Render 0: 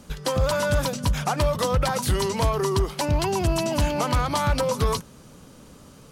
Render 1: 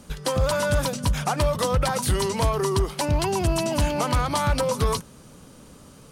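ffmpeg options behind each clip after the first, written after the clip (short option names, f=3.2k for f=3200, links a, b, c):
-af "equalizer=f=9.1k:w=5.3:g=5.5"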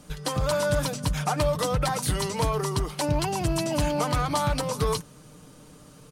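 -af "aecho=1:1:6.6:0.5,volume=-3dB"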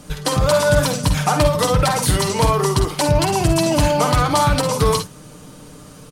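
-af "aecho=1:1:49|59|70:0.335|0.299|0.133,volume=8.5dB"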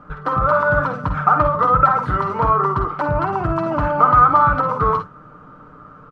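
-af "lowpass=f=1.3k:t=q:w=9,volume=-5.5dB"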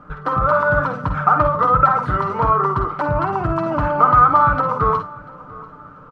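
-af "aecho=1:1:690|1380|2070:0.0841|0.0303|0.0109"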